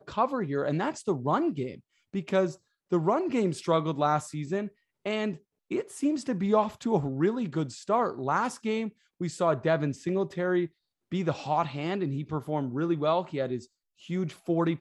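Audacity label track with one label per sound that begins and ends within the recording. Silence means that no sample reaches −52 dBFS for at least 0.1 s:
2.140000	2.560000	sound
2.910000	4.710000	sound
5.060000	5.390000	sound
5.710000	8.920000	sound
9.200000	10.680000	sound
11.120000	13.660000	sound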